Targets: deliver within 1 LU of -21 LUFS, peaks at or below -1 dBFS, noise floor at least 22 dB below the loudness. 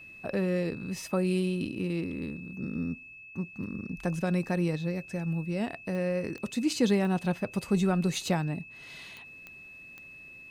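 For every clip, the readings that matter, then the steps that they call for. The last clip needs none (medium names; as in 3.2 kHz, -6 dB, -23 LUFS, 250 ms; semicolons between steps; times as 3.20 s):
clicks found 6; steady tone 2.6 kHz; tone level -46 dBFS; loudness -31.0 LUFS; peak level -13.0 dBFS; loudness target -21.0 LUFS
-> de-click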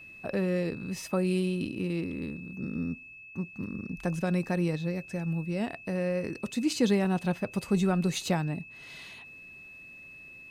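clicks found 0; steady tone 2.6 kHz; tone level -46 dBFS
-> band-stop 2.6 kHz, Q 30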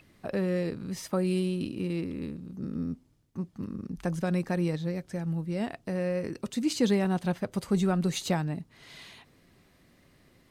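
steady tone not found; loudness -31.0 LUFS; peak level -13.0 dBFS; loudness target -21.0 LUFS
-> trim +10 dB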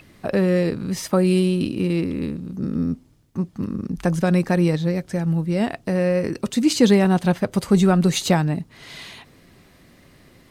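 loudness -21.0 LUFS; peak level -3.0 dBFS; noise floor -53 dBFS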